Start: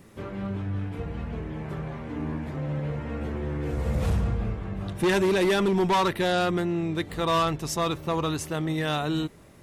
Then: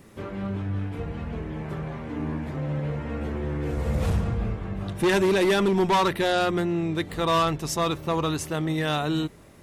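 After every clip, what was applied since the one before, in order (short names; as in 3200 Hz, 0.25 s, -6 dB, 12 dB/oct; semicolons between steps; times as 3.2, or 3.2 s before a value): notches 60/120/180 Hz; gain +1.5 dB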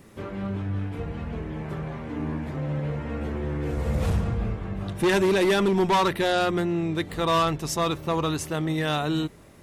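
nothing audible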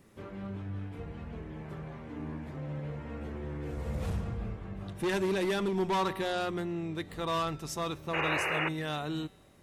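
painted sound noise, 8.13–8.69, 320–2900 Hz -22 dBFS; resonator 190 Hz, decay 1.4 s, mix 50%; gain -3.5 dB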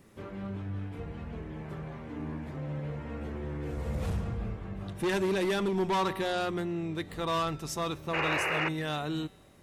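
soft clip -21.5 dBFS, distortion -25 dB; gain +2 dB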